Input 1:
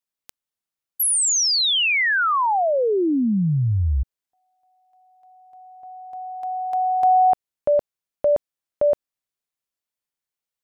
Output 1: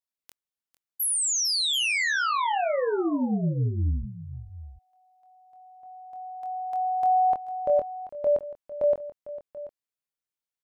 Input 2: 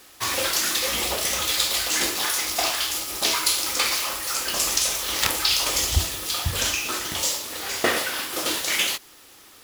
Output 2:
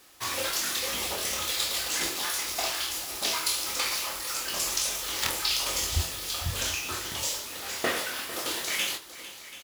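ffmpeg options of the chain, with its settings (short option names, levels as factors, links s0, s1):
-filter_complex "[0:a]asplit=2[s0][s1];[s1]adelay=24,volume=0.473[s2];[s0][s2]amix=inputs=2:normalize=0,aecho=1:1:451|734:0.168|0.158,volume=0.447"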